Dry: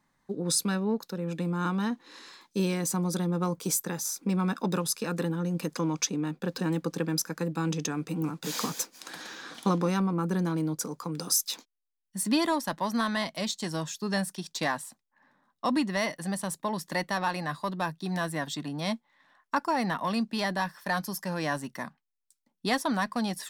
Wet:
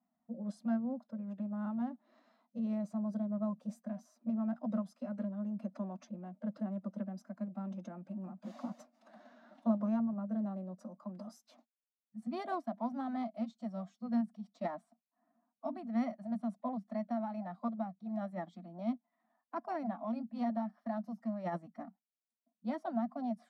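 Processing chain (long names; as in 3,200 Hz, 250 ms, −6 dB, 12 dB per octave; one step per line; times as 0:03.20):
pair of resonant band-passes 340 Hz, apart 1.6 octaves
phase-vocoder pitch shift with formants kept +3 semitones
level +1 dB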